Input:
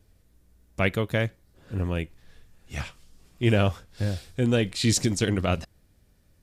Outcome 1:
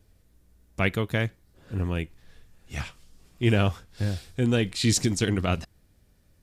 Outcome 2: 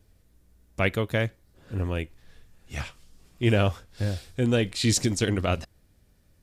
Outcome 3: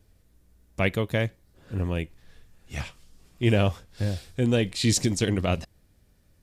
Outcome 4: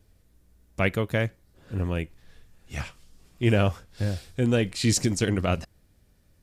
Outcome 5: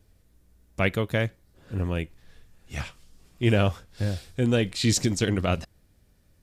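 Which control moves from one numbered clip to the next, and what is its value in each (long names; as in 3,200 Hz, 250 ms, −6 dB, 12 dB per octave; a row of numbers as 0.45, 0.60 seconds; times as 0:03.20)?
dynamic equaliser, frequency: 560, 170, 1,400, 3,600, 9,700 Hertz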